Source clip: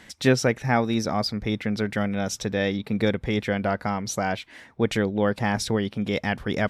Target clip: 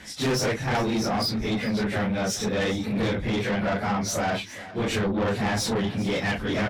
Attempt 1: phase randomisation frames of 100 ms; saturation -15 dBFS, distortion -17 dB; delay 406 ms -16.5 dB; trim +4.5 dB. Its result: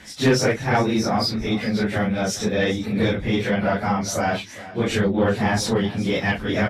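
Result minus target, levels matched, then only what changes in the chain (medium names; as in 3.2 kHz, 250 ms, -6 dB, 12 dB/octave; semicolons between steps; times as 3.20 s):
saturation: distortion -9 dB
change: saturation -26 dBFS, distortion -7 dB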